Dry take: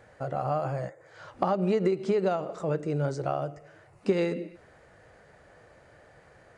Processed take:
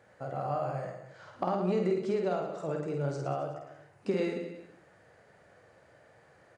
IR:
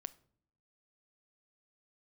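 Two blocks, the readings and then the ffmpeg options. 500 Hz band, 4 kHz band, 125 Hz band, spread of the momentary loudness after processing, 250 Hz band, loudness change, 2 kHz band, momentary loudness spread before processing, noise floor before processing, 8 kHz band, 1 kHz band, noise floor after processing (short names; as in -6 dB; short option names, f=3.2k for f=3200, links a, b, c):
-3.5 dB, -4.0 dB, -4.5 dB, 15 LU, -3.5 dB, -4.0 dB, -3.5 dB, 12 LU, -57 dBFS, n/a, -3.5 dB, -61 dBFS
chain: -filter_complex "[0:a]highpass=99,asplit=2[a][b];[b]aecho=0:1:50|110|182|268.4|372.1:0.631|0.398|0.251|0.158|0.1[c];[a][c]amix=inputs=2:normalize=0,volume=-6dB"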